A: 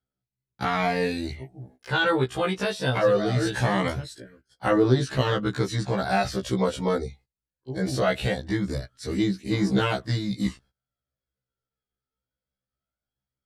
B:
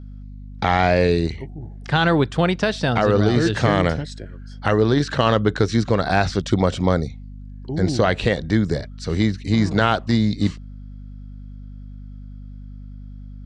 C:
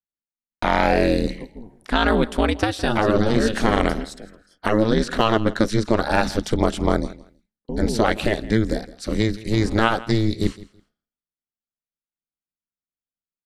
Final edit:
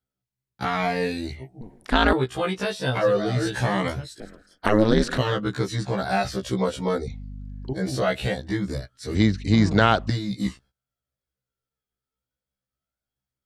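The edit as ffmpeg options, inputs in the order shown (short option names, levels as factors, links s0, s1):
-filter_complex "[2:a]asplit=2[s0][s1];[1:a]asplit=2[s2][s3];[0:a]asplit=5[s4][s5][s6][s7][s8];[s4]atrim=end=1.612[s9];[s0]atrim=start=1.608:end=2.132[s10];[s5]atrim=start=2.128:end=4.202[s11];[s1]atrim=start=4.198:end=5.182[s12];[s6]atrim=start=5.178:end=7.072[s13];[s2]atrim=start=7.068:end=7.732[s14];[s7]atrim=start=7.728:end=9.152[s15];[s3]atrim=start=9.148:end=10.102[s16];[s8]atrim=start=10.098[s17];[s9][s10]acrossfade=d=0.004:c1=hsin:c2=hsin[s18];[s18][s11]acrossfade=d=0.004:c1=hsin:c2=hsin[s19];[s19][s12]acrossfade=d=0.004:c1=hsin:c2=hsin[s20];[s20][s13]acrossfade=d=0.004:c1=hsin:c2=hsin[s21];[s21][s14]acrossfade=d=0.004:c1=hsin:c2=hsin[s22];[s22][s15]acrossfade=d=0.004:c1=hsin:c2=hsin[s23];[s23][s16]acrossfade=d=0.004:c1=hsin:c2=hsin[s24];[s24][s17]acrossfade=d=0.004:c1=hsin:c2=hsin"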